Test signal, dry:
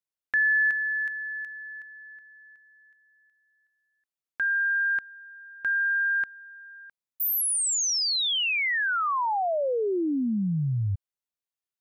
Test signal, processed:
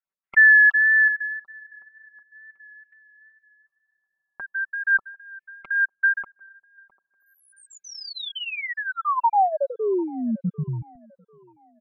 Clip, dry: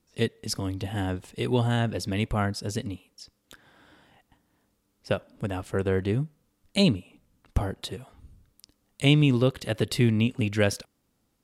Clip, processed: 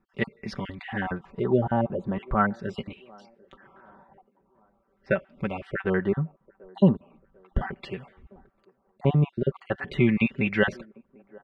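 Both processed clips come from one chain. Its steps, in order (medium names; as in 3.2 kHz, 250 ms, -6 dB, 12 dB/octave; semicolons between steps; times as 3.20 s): random holes in the spectrogram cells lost 29%; wow and flutter 25 cents; LFO low-pass sine 0.41 Hz 900–2300 Hz; comb 5.2 ms, depth 65%; on a send: feedback echo behind a band-pass 745 ms, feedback 40%, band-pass 500 Hz, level -23 dB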